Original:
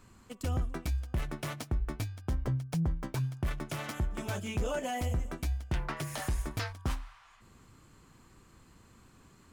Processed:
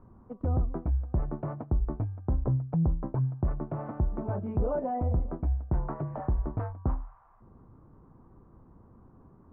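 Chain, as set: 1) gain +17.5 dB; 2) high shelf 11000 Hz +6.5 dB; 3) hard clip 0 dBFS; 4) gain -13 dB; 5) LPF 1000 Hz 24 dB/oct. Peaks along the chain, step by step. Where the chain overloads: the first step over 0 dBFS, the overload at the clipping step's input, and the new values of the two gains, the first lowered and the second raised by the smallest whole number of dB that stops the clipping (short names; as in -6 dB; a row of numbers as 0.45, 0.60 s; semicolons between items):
-7.5, -6.0, -6.0, -19.0, -19.5 dBFS; no overload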